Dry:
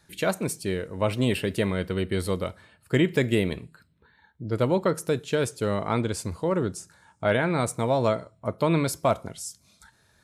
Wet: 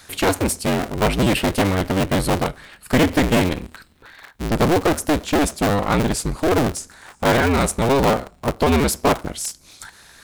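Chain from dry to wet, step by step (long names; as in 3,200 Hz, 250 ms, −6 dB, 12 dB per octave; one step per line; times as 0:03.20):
sub-harmonics by changed cycles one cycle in 2, inverted
in parallel at −4 dB: wave folding −23.5 dBFS
on the sum: one half of a high-frequency compander encoder only
level +5 dB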